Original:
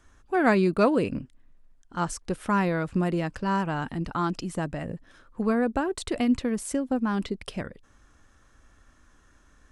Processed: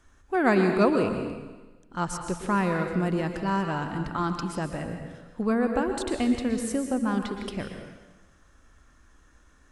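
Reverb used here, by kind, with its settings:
dense smooth reverb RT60 1.2 s, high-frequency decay 0.95×, pre-delay 105 ms, DRR 5 dB
level −1 dB

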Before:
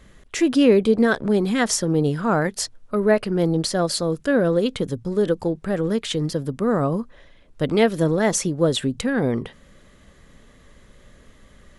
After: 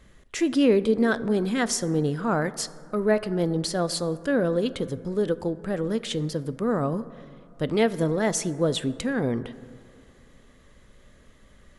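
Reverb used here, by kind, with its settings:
dense smooth reverb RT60 2.5 s, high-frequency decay 0.3×, DRR 15 dB
level −4.5 dB

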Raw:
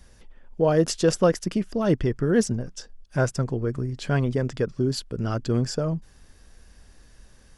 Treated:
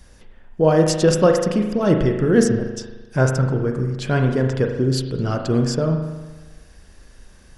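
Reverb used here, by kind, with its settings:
spring reverb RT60 1.2 s, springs 38 ms, chirp 75 ms, DRR 3.5 dB
level +4 dB

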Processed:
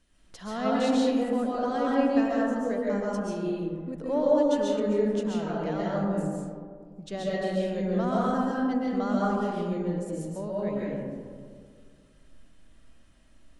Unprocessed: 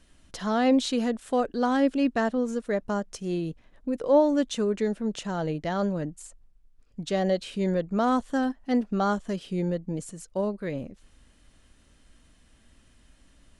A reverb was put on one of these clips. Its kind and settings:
comb and all-pass reverb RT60 2 s, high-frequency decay 0.3×, pre-delay 95 ms, DRR −6.5 dB
level −9 dB

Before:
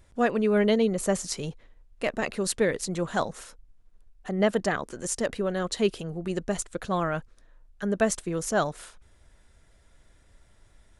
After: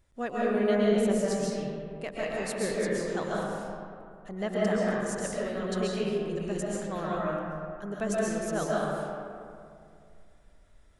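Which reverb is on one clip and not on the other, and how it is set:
comb and all-pass reverb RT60 2.4 s, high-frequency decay 0.45×, pre-delay 95 ms, DRR −6 dB
level −10 dB

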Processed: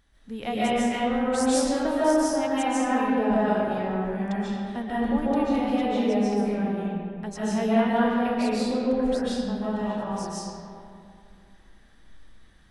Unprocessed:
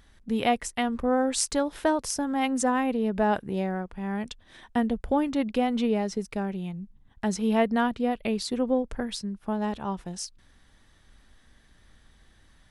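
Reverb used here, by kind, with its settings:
comb and all-pass reverb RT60 2.5 s, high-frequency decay 0.5×, pre-delay 105 ms, DRR −10 dB
level −8.5 dB

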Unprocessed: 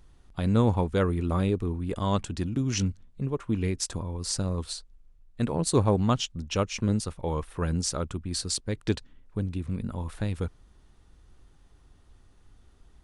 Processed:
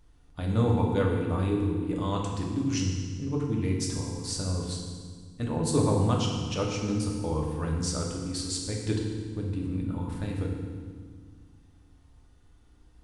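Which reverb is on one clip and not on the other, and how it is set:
feedback delay network reverb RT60 1.7 s, low-frequency decay 1.55×, high-frequency decay 0.9×, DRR −1.5 dB
level −5.5 dB

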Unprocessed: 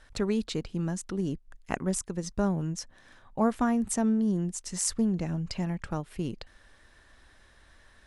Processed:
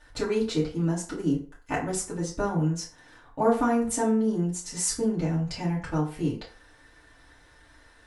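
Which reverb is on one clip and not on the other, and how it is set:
feedback delay network reverb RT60 0.44 s, low-frequency decay 0.75×, high-frequency decay 0.65×, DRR −8 dB
level −4.5 dB

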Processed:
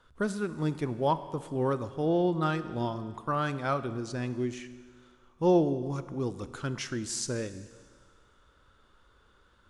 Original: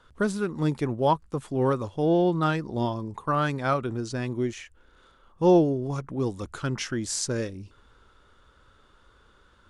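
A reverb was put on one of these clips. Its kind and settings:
four-comb reverb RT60 1.8 s, combs from 25 ms, DRR 12.5 dB
level −4.5 dB

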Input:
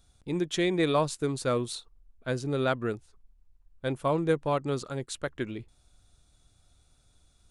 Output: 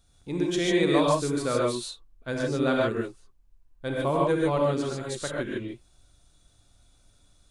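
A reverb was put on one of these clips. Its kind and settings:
reverb whose tail is shaped and stops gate 170 ms rising, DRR −3 dB
level −1.5 dB

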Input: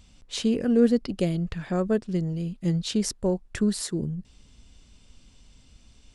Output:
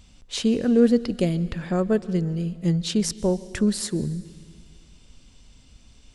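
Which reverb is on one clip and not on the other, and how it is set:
dense smooth reverb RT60 1.9 s, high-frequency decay 1×, pre-delay 115 ms, DRR 17.5 dB
level +2.5 dB

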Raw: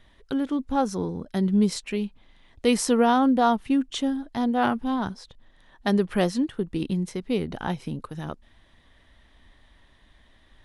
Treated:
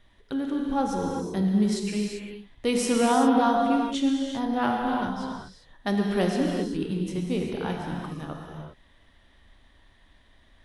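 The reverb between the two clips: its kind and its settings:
reverb whose tail is shaped and stops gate 420 ms flat, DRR −0.5 dB
level −4 dB

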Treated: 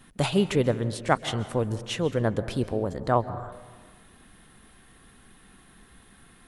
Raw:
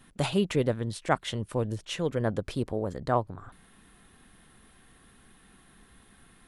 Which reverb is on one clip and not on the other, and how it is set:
dense smooth reverb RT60 1.4 s, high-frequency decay 0.45×, pre-delay 120 ms, DRR 13.5 dB
level +3 dB

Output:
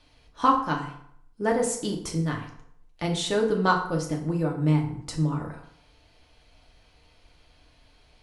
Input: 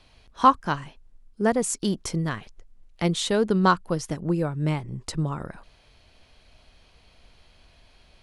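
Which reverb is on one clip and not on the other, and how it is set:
feedback delay network reverb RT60 0.67 s, low-frequency decay 0.95×, high-frequency decay 0.7×, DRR 0 dB
level −4.5 dB

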